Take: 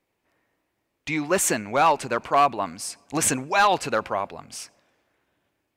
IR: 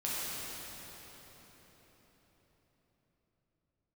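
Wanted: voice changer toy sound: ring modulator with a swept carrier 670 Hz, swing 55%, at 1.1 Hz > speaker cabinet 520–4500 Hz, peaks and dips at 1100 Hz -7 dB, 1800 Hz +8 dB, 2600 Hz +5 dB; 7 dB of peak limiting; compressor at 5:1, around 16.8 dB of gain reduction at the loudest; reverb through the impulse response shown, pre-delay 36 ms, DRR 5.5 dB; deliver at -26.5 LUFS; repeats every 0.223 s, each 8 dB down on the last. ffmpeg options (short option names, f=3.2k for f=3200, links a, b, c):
-filter_complex "[0:a]acompressor=threshold=-34dB:ratio=5,alimiter=level_in=3.5dB:limit=-24dB:level=0:latency=1,volume=-3.5dB,aecho=1:1:223|446|669|892|1115:0.398|0.159|0.0637|0.0255|0.0102,asplit=2[a][b];[1:a]atrim=start_sample=2205,adelay=36[c];[b][c]afir=irnorm=-1:irlink=0,volume=-12dB[d];[a][d]amix=inputs=2:normalize=0,aeval=exprs='val(0)*sin(2*PI*670*n/s+670*0.55/1.1*sin(2*PI*1.1*n/s))':c=same,highpass=520,equalizer=f=1.1k:t=q:w=4:g=-7,equalizer=f=1.8k:t=q:w=4:g=8,equalizer=f=2.6k:t=q:w=4:g=5,lowpass=f=4.5k:w=0.5412,lowpass=f=4.5k:w=1.3066,volume=12dB"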